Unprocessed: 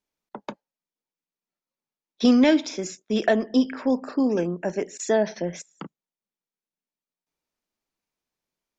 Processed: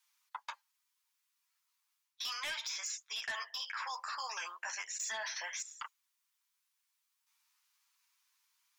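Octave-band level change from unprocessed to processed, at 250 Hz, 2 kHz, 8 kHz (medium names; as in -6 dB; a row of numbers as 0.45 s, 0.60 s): under -40 dB, -6.0 dB, no reading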